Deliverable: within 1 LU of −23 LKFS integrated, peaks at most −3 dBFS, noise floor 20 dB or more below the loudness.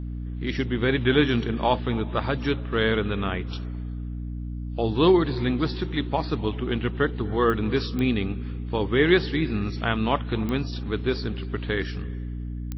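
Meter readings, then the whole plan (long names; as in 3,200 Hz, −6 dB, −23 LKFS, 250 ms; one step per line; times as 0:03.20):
number of clicks 4; mains hum 60 Hz; hum harmonics up to 300 Hz; level of the hum −29 dBFS; integrated loudness −25.5 LKFS; sample peak −6.0 dBFS; target loudness −23.0 LKFS
→ click removal
hum removal 60 Hz, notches 5
level +2.5 dB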